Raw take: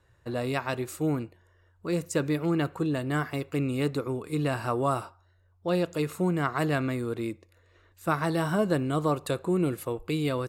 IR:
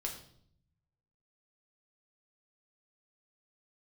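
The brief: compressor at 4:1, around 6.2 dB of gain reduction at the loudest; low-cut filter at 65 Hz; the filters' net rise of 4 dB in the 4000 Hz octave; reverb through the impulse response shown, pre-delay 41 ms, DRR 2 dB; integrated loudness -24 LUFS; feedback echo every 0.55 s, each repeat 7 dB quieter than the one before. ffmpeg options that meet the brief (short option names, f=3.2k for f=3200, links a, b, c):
-filter_complex "[0:a]highpass=65,equalizer=f=4k:t=o:g=5,acompressor=threshold=-28dB:ratio=4,aecho=1:1:550|1100|1650|2200|2750:0.447|0.201|0.0905|0.0407|0.0183,asplit=2[a][b];[1:a]atrim=start_sample=2205,adelay=41[c];[b][c]afir=irnorm=-1:irlink=0,volume=-2dB[d];[a][d]amix=inputs=2:normalize=0,volume=5.5dB"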